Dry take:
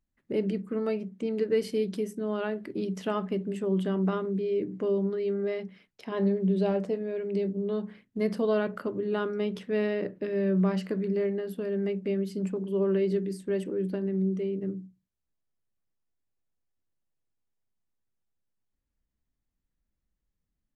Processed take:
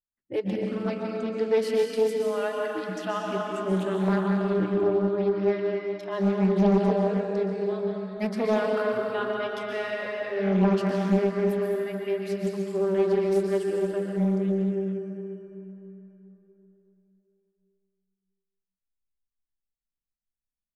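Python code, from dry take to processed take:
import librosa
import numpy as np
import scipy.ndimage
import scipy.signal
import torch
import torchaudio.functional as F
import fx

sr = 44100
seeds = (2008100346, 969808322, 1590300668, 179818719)

y = fx.noise_reduce_blind(x, sr, reduce_db=24)
y = fx.rev_plate(y, sr, seeds[0], rt60_s=3.7, hf_ratio=0.65, predelay_ms=110, drr_db=-2.0)
y = fx.doppler_dist(y, sr, depth_ms=0.56)
y = y * librosa.db_to_amplitude(2.5)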